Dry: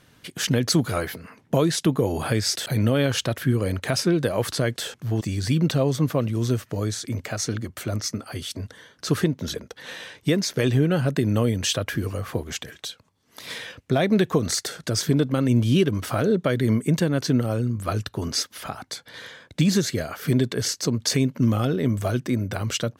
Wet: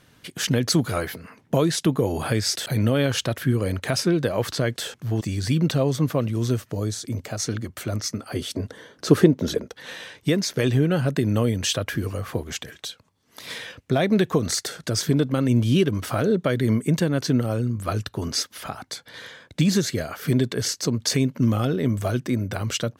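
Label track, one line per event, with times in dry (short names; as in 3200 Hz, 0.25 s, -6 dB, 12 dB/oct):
4.200000	4.720000	bell 10000 Hz -6.5 dB 0.57 oct
6.590000	7.400000	dynamic EQ 1900 Hz, up to -6 dB, over -49 dBFS, Q 0.85
8.310000	9.700000	bell 390 Hz +9 dB 2.3 oct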